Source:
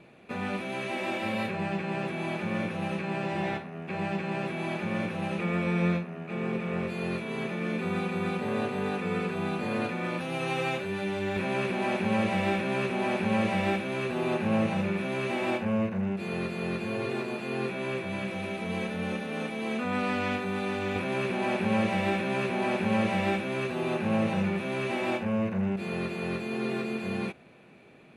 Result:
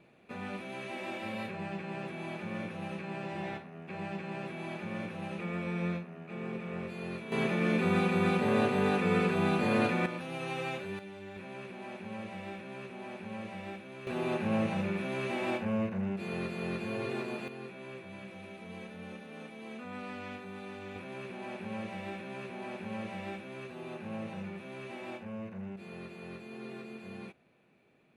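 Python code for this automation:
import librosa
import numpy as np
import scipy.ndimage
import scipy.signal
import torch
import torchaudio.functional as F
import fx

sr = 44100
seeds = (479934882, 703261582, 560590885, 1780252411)

y = fx.gain(x, sr, db=fx.steps((0.0, -7.5), (7.32, 2.5), (10.06, -6.5), (10.99, -15.0), (14.07, -4.0), (17.48, -13.0)))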